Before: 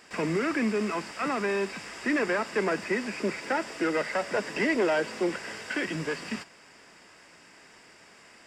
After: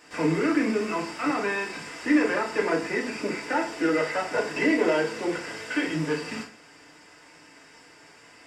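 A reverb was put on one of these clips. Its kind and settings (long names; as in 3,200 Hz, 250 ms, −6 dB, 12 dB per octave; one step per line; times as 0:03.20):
feedback delay network reverb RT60 0.44 s, low-frequency decay 1×, high-frequency decay 0.8×, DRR −2.5 dB
level −2.5 dB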